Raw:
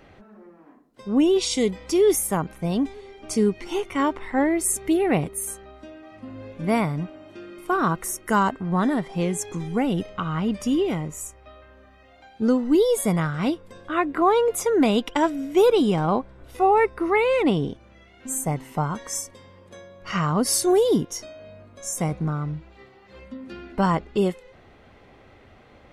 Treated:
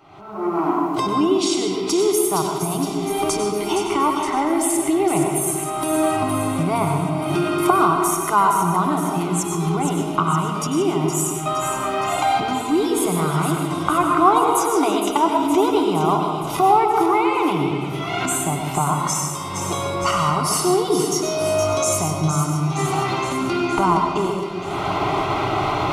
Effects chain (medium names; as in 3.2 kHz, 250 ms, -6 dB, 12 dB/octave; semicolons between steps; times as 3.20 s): recorder AGC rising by 57 dB/s; high-pass 53 Hz; peaking EQ 1.4 kHz +12 dB 1.4 oct; static phaser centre 340 Hz, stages 8; feedback echo behind a high-pass 466 ms, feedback 62%, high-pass 2 kHz, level -7 dB; reverberation RT60 2.0 s, pre-delay 94 ms, DRR 1.5 dB; 12.66–14.98 s: modulated delay 158 ms, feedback 58%, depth 102 cents, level -9.5 dB; trim -1 dB